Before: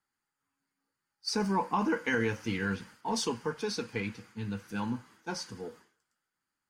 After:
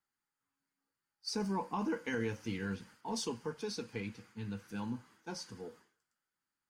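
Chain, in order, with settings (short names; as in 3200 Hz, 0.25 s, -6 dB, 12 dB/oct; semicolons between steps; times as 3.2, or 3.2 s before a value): dynamic EQ 1500 Hz, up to -5 dB, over -45 dBFS, Q 0.71; gain -5 dB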